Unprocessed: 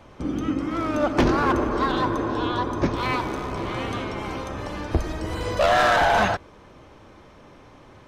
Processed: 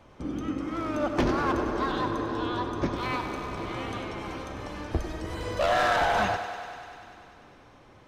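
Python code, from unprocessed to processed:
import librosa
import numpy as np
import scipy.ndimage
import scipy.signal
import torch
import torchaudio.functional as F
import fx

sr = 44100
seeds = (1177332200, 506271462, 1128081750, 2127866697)

y = fx.echo_thinned(x, sr, ms=98, feedback_pct=80, hz=230.0, wet_db=-11.0)
y = y * librosa.db_to_amplitude(-6.0)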